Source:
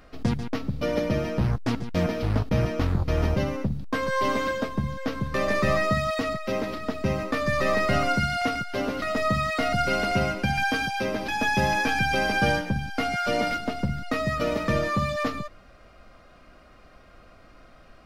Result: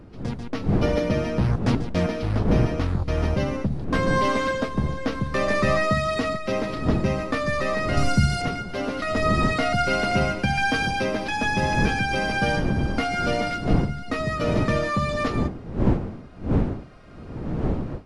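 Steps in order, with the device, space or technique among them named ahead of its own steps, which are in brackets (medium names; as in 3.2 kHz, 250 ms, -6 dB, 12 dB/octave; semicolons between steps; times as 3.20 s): 7.97–8.42 s: tone controls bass +13 dB, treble +11 dB; smartphone video outdoors (wind noise 250 Hz -29 dBFS; level rider gain up to 10 dB; trim -6.5 dB; AAC 96 kbps 24 kHz)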